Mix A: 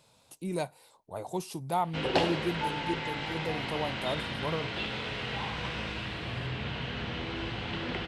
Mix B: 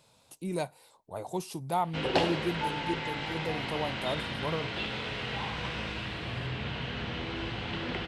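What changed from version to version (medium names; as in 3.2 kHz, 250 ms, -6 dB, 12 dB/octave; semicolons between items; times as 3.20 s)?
no change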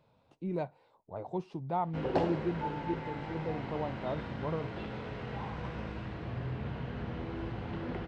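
background: remove resonant low-pass 3.2 kHz, resonance Q 1.7; master: add tape spacing loss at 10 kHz 41 dB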